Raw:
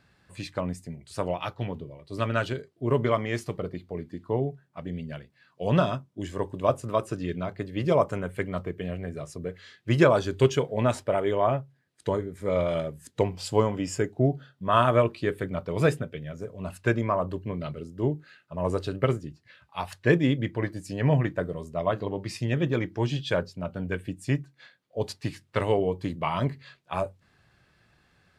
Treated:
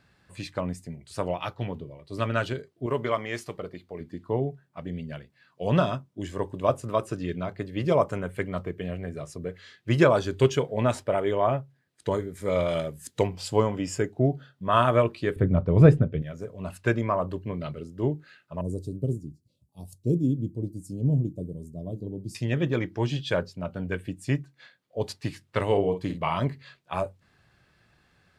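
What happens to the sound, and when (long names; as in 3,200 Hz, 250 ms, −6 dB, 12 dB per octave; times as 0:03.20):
0:02.86–0:04.01: low-shelf EQ 320 Hz −9 dB
0:12.11–0:13.27: high-shelf EQ 3,200 Hz +8 dB
0:15.36–0:16.22: spectral tilt −4 dB per octave
0:18.61–0:22.35: Chebyshev band-stop filter 270–8,800 Hz
0:25.66–0:26.37: double-tracking delay 50 ms −8 dB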